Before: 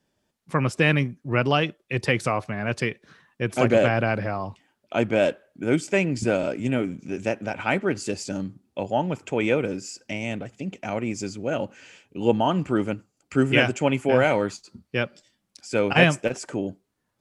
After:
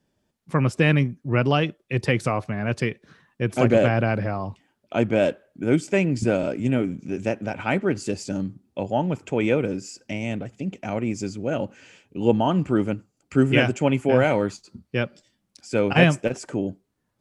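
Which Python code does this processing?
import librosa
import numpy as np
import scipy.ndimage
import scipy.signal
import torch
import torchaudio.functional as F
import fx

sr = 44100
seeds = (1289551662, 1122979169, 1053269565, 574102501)

y = fx.low_shelf(x, sr, hz=440.0, db=6.0)
y = y * librosa.db_to_amplitude(-2.0)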